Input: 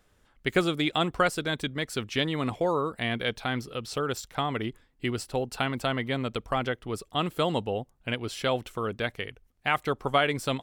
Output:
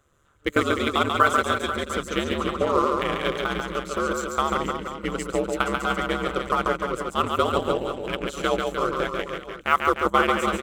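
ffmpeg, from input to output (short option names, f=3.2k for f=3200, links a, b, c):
-filter_complex "[0:a]superequalizer=7b=2:10b=2.82:14b=0.562:15b=2,asplit=2[a][b];[b]acrusher=bits=3:mix=0:aa=0.5,volume=-11dB[c];[a][c]amix=inputs=2:normalize=0,aeval=exprs='val(0)*sin(2*PI*72*n/s)':c=same,aecho=1:1:140|301|486.2|699.1|943.9:0.631|0.398|0.251|0.158|0.1"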